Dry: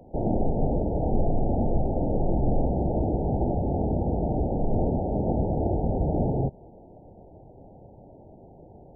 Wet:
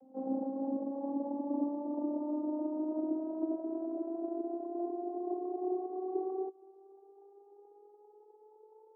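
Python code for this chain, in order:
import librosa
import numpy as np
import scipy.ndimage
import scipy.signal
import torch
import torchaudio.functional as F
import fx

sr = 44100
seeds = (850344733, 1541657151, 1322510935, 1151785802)

y = fx.vocoder_glide(x, sr, note=60, semitones=9)
y = y * librosa.db_to_amplitude(-8.0)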